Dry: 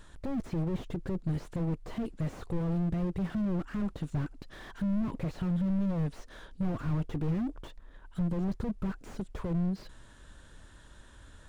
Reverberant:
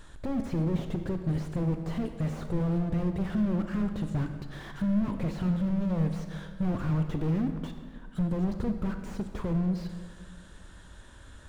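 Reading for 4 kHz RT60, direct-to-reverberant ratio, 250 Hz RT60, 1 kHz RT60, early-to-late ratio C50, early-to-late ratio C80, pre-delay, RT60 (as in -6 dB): 1.3 s, 6.5 dB, 2.0 s, 1.7 s, 7.5 dB, 9.0 dB, 24 ms, 1.7 s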